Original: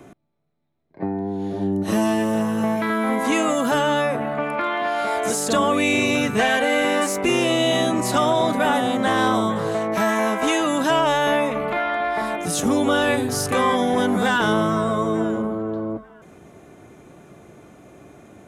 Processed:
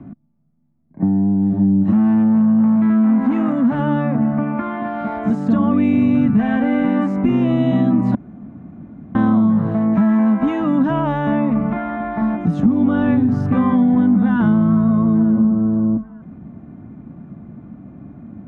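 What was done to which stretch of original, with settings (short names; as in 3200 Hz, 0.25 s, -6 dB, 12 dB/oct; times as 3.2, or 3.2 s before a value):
1.92–3.79 core saturation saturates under 940 Hz
8.15–9.15 room tone
whole clip: LPF 1300 Hz 12 dB/oct; resonant low shelf 310 Hz +9.5 dB, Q 3; compressor, threshold -11 dBFS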